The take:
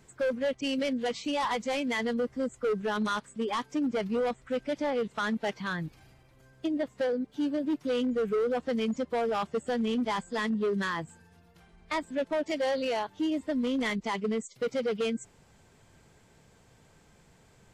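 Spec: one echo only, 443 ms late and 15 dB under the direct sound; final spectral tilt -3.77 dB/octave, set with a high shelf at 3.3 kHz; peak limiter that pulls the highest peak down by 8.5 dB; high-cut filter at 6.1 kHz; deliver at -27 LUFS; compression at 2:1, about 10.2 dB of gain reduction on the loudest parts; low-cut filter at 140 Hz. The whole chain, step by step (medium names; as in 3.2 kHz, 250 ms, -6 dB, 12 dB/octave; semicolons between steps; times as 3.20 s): high-pass 140 Hz; low-pass 6.1 kHz; treble shelf 3.3 kHz +3.5 dB; compression 2:1, threshold -45 dBFS; peak limiter -37 dBFS; delay 443 ms -15 dB; trim +18 dB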